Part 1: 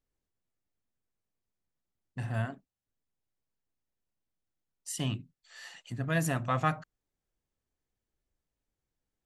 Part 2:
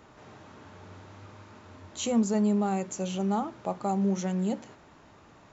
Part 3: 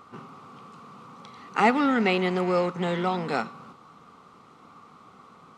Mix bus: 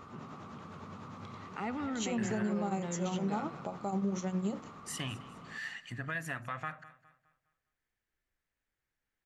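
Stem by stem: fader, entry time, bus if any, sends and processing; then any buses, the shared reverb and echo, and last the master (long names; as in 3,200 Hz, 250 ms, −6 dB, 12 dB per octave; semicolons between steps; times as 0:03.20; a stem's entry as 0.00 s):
−4.5 dB, 0.00 s, no send, echo send −18.5 dB, parametric band 1,800 Hz +14 dB 1.4 octaves; downward compressor 6 to 1, threshold −30 dBFS, peak gain reduction 14.5 dB
0.0 dB, 0.00 s, no send, no echo send, shaped tremolo triangle 9.9 Hz, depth 80%
−19.0 dB, 0.00 s, no send, echo send −12 dB, bass and treble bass +8 dB, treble −6 dB; envelope flattener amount 50%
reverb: not used
echo: repeating echo 206 ms, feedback 37%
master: brickwall limiter −25.5 dBFS, peak gain reduction 8.5 dB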